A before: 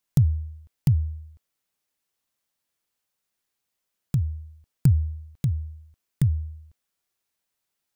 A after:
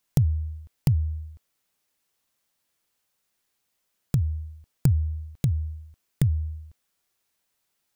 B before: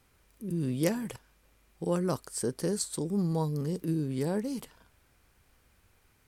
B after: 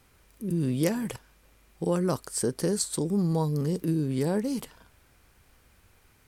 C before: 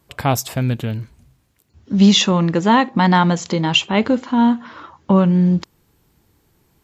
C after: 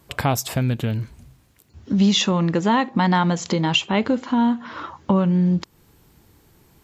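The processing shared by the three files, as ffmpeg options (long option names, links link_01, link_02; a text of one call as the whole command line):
ffmpeg -i in.wav -af "acompressor=threshold=-28dB:ratio=2,volume=5dB" out.wav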